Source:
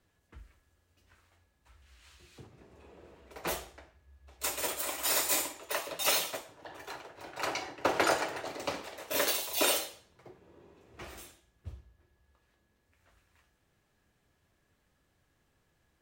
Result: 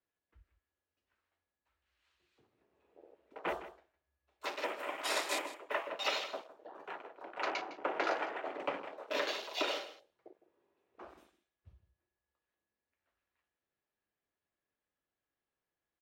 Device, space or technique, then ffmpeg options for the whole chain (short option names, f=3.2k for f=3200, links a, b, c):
DJ mixer with the lows and highs turned down: -filter_complex "[0:a]acrossover=split=250 4600:gain=0.251 1 0.251[a][b][c];[a][b][c]amix=inputs=3:normalize=0,alimiter=limit=-21dB:level=0:latency=1:release=363,afwtdn=0.00631,asettb=1/sr,asplit=3[d][e][f];[d]atrim=end=10.294[g];[e]atrim=start=10.29:end=11.75,asetpts=PTS-STARTPTS,afade=t=in:d=0.004:c=qsin,afade=t=out:st=1.456:d=0.004:c=qsin,lowshelf=f=320:g=-5[h];[f]atrim=start=11.746[i];[g][h]acrossfade=d=0.004:c1=hsin:c2=qsin[j];[j][i]acrossfade=d=0.004:c1=qsin:c2=hsin,aecho=1:1:158:0.188"